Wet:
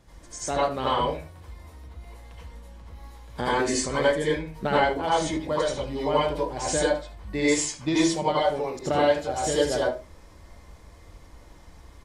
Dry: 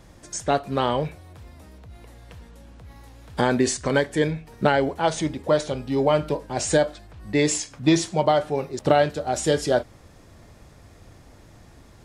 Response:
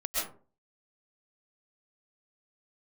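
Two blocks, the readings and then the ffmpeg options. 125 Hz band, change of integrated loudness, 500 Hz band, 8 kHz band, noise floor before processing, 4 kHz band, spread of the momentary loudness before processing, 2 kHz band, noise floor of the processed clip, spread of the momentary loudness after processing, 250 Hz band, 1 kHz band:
−6.0 dB, −2.0 dB, −2.0 dB, −1.5 dB, −50 dBFS, −0.5 dB, 7 LU, −1.0 dB, −50 dBFS, 19 LU, −3.5 dB, −0.5 dB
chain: -filter_complex "[0:a]aecho=1:1:76:0.141[link_01];[1:a]atrim=start_sample=2205,asetrate=70560,aresample=44100[link_02];[link_01][link_02]afir=irnorm=-1:irlink=0,volume=-3dB"

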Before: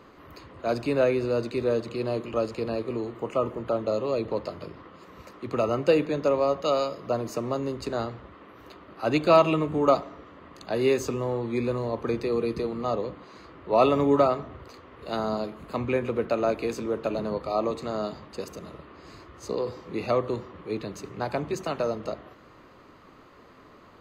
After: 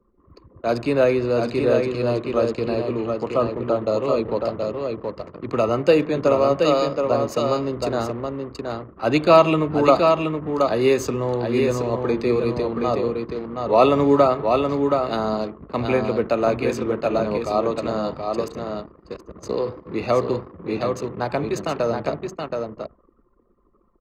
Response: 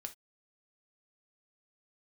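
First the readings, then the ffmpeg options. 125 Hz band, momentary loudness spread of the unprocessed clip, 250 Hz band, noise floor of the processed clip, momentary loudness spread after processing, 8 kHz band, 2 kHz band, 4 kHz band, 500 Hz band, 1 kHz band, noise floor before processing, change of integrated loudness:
+6.5 dB, 16 LU, +6.5 dB, −59 dBFS, 12 LU, can't be measured, +6.0 dB, +6.0 dB, +6.5 dB, +6.5 dB, −52 dBFS, +5.5 dB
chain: -af "aecho=1:1:724:0.596,anlmdn=0.398,volume=5dB"

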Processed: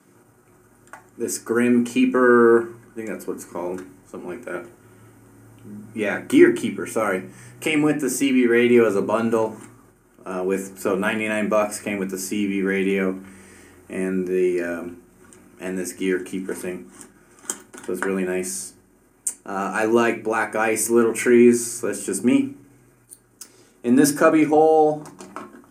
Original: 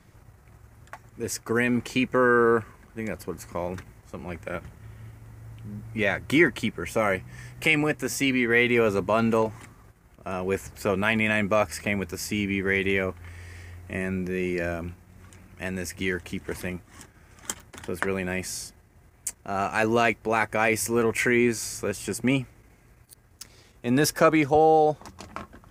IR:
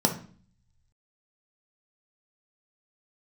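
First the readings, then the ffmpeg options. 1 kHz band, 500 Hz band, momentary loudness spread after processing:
+2.0 dB, +5.0 dB, 18 LU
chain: -filter_complex "[0:a]highshelf=frequency=3100:gain=10.5[link_01];[1:a]atrim=start_sample=2205,asetrate=70560,aresample=44100[link_02];[link_01][link_02]afir=irnorm=-1:irlink=0,volume=-11dB"

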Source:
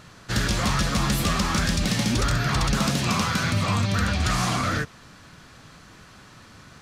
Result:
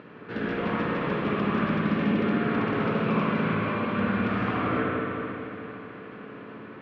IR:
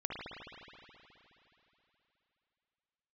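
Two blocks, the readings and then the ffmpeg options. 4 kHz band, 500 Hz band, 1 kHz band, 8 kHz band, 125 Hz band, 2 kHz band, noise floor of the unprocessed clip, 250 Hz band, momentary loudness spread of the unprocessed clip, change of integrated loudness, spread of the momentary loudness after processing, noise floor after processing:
−14.5 dB, +4.5 dB, −2.0 dB, below −40 dB, −7.0 dB, −3.0 dB, −49 dBFS, +1.5 dB, 2 LU, −3.5 dB, 16 LU, −44 dBFS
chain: -filter_complex "[0:a]acompressor=mode=upward:threshold=-33dB:ratio=2.5,highpass=210,equalizer=frequency=210:width_type=q:width=4:gain=3,equalizer=frequency=300:width_type=q:width=4:gain=5,equalizer=frequency=440:width_type=q:width=4:gain=8,equalizer=frequency=770:width_type=q:width=4:gain=-5,equalizer=frequency=1300:width_type=q:width=4:gain=-4,equalizer=frequency=1900:width_type=q:width=4:gain=-4,lowpass=frequency=2400:width=0.5412,lowpass=frequency=2400:width=1.3066[link_01];[1:a]atrim=start_sample=2205,asetrate=41895,aresample=44100[link_02];[link_01][link_02]afir=irnorm=-1:irlink=0,volume=-3dB"

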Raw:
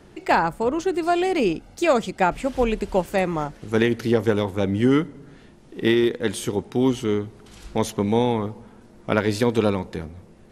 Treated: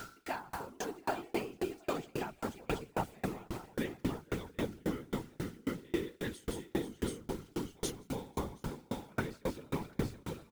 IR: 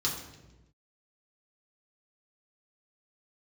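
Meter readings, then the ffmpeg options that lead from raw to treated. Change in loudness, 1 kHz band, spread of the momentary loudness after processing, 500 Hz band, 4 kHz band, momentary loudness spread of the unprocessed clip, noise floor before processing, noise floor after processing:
−17.0 dB, −16.5 dB, 5 LU, −18.0 dB, −14.5 dB, 9 LU, −49 dBFS, −63 dBFS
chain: -filter_complex "[0:a]areverse,acompressor=threshold=-33dB:ratio=6,areverse,aeval=exprs='val(0)+0.00398*sin(2*PI*1400*n/s)':channel_layout=same,equalizer=frequency=550:width_type=o:width=0.24:gain=-11,aecho=1:1:171|249|488|729:0.376|0.1|0.266|0.596,asplit=2[link_01][link_02];[link_02]asoftclip=type=tanh:threshold=-36dB,volume=-6dB[link_03];[link_01][link_03]amix=inputs=2:normalize=0,acrusher=bits=7:mix=0:aa=0.000001,afftfilt=real='hypot(re,im)*cos(2*PI*random(0))':imag='hypot(re,im)*sin(2*PI*random(1))':win_size=512:overlap=0.75,aeval=exprs='val(0)*pow(10,-34*if(lt(mod(3.7*n/s,1),2*abs(3.7)/1000),1-mod(3.7*n/s,1)/(2*abs(3.7)/1000),(mod(3.7*n/s,1)-2*abs(3.7)/1000)/(1-2*abs(3.7)/1000))/20)':channel_layout=same,volume=9.5dB"

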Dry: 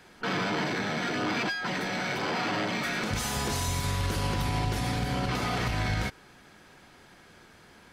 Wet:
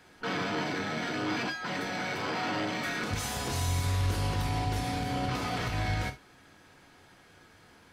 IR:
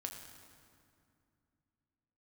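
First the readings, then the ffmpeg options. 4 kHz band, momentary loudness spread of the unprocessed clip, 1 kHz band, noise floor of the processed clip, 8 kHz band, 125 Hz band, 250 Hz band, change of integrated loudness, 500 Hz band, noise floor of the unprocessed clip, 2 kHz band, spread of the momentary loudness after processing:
−3.0 dB, 2 LU, −2.0 dB, −58 dBFS, −3.0 dB, −0.5 dB, −2.5 dB, −2.0 dB, −2.5 dB, −55 dBFS, −3.0 dB, 4 LU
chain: -filter_complex "[1:a]atrim=start_sample=2205,atrim=end_sample=3528[link_01];[0:a][link_01]afir=irnorm=-1:irlink=0"

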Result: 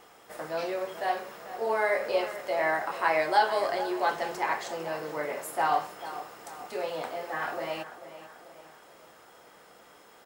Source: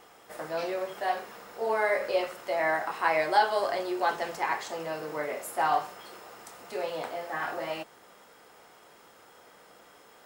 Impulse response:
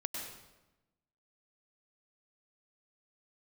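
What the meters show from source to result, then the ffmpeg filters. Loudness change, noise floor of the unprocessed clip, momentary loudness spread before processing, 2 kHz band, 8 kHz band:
0.0 dB, −56 dBFS, 17 LU, 0.0 dB, 0.0 dB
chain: -filter_complex "[0:a]asplit=2[link_01][link_02];[link_02]adelay=440,lowpass=frequency=3200:poles=1,volume=-13dB,asplit=2[link_03][link_04];[link_04]adelay=440,lowpass=frequency=3200:poles=1,volume=0.52,asplit=2[link_05][link_06];[link_06]adelay=440,lowpass=frequency=3200:poles=1,volume=0.52,asplit=2[link_07][link_08];[link_08]adelay=440,lowpass=frequency=3200:poles=1,volume=0.52,asplit=2[link_09][link_10];[link_10]adelay=440,lowpass=frequency=3200:poles=1,volume=0.52[link_11];[link_01][link_03][link_05][link_07][link_09][link_11]amix=inputs=6:normalize=0"

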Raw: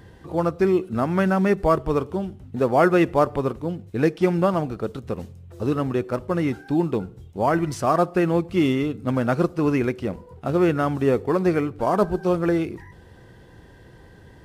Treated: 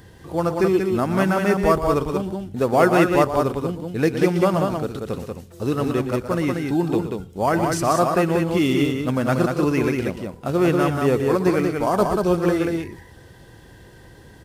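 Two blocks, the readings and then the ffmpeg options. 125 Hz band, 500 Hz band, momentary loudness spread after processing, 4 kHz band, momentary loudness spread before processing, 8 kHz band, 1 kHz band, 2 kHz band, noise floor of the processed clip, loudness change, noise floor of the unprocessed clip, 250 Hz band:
+1.5 dB, +2.0 dB, 9 LU, +6.0 dB, 10 LU, +9.0 dB, +2.0 dB, +3.5 dB, −46 dBFS, +2.0 dB, −48 dBFS, +1.5 dB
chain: -filter_complex "[0:a]highshelf=frequency=4000:gain=9.5,asplit=2[link_01][link_02];[link_02]aecho=0:1:119.5|186.6:0.282|0.631[link_03];[link_01][link_03]amix=inputs=2:normalize=0"

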